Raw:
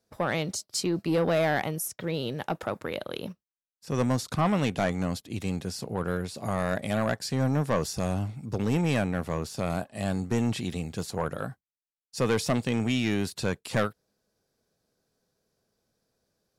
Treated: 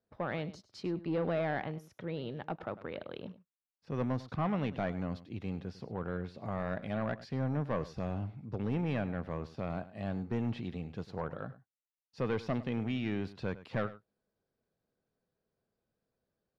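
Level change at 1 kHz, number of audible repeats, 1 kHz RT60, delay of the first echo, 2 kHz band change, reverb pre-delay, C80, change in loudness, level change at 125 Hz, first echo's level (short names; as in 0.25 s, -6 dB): -8.0 dB, 1, none, 0.101 s, -9.5 dB, none, none, -8.0 dB, -7.0 dB, -16.5 dB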